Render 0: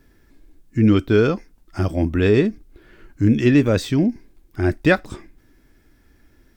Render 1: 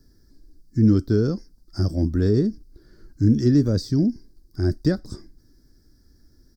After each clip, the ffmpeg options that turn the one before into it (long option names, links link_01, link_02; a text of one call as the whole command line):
ffmpeg -i in.wav -filter_complex "[0:a]firequalizer=gain_entry='entry(140,0);entry(820,-13);entry(1600,-10);entry(2600,-29);entry(4800,9);entry(6900,-3)':delay=0.05:min_phase=1,acrossover=split=470[link_01][link_02];[link_02]acompressor=threshold=-31dB:ratio=10[link_03];[link_01][link_03]amix=inputs=2:normalize=0" out.wav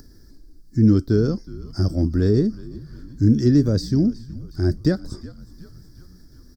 ffmpeg -i in.wav -filter_complex "[0:a]acompressor=mode=upward:threshold=-40dB:ratio=2.5,asplit=6[link_01][link_02][link_03][link_04][link_05][link_06];[link_02]adelay=368,afreqshift=-68,volume=-18.5dB[link_07];[link_03]adelay=736,afreqshift=-136,volume=-23.1dB[link_08];[link_04]adelay=1104,afreqshift=-204,volume=-27.7dB[link_09];[link_05]adelay=1472,afreqshift=-272,volume=-32.2dB[link_10];[link_06]adelay=1840,afreqshift=-340,volume=-36.8dB[link_11];[link_01][link_07][link_08][link_09][link_10][link_11]amix=inputs=6:normalize=0,volume=1.5dB" out.wav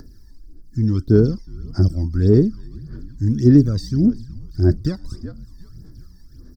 ffmpeg -i in.wav -af "aphaser=in_gain=1:out_gain=1:delay=1.1:decay=0.7:speed=1.7:type=sinusoidal,volume=-5dB" out.wav